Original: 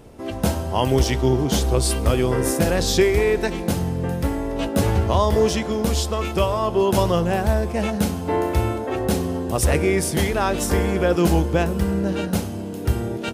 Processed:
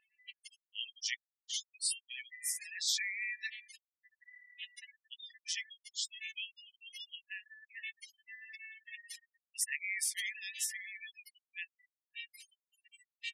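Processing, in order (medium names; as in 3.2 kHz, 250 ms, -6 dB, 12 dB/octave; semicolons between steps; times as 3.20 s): spectral gate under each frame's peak -25 dB strong; brick-wall FIR high-pass 1.7 kHz; trim -7.5 dB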